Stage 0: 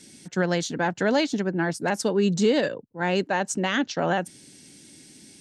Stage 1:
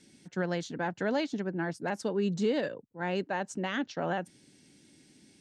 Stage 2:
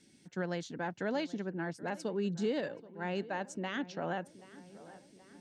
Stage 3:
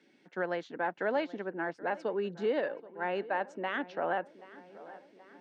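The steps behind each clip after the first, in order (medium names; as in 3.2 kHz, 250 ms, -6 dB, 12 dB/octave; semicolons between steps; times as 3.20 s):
treble shelf 5.6 kHz -11 dB; trim -7.5 dB
filtered feedback delay 778 ms, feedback 65%, low-pass 2.4 kHz, level -18 dB; trim -4.5 dB
band-pass 420–2100 Hz; trim +6.5 dB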